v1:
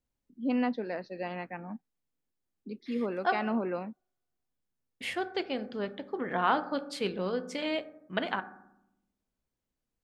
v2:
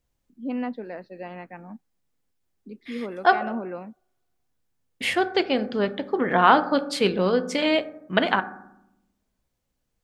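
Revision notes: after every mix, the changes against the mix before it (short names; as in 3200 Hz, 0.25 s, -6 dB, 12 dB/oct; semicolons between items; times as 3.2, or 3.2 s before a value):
first voice: add air absorption 200 m; second voice +10.5 dB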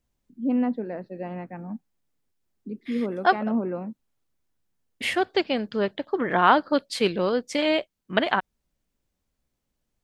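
first voice: add tilt -3 dB/oct; reverb: off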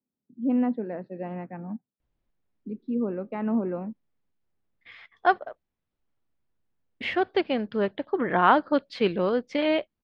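second voice: entry +2.00 s; master: add air absorption 260 m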